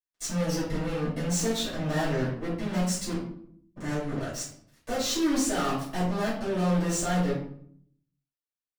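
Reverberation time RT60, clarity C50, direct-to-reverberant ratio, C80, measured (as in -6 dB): 0.65 s, 4.0 dB, -11.0 dB, 8.5 dB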